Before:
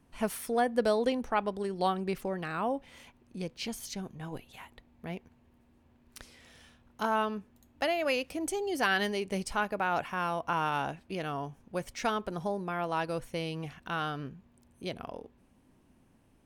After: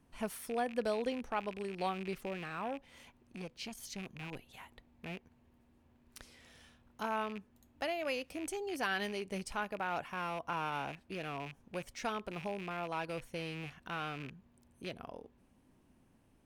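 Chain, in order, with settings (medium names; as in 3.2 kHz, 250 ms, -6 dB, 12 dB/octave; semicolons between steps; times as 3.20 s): rattle on loud lows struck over -43 dBFS, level -30 dBFS; in parallel at -3 dB: compression, threshold -44 dBFS, peak gain reduction 20 dB; 2.43–3.79 s: on the sum: transformer saturation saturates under 600 Hz; trim -8 dB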